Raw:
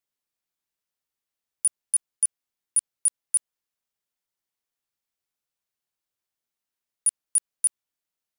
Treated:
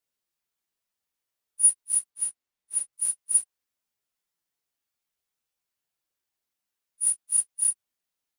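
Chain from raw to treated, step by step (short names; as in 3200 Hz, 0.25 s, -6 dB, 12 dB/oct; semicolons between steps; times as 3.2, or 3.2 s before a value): phase scrambler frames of 0.1 s; 2.1–2.93 high shelf 5000 Hz -6.5 dB; gain +1.5 dB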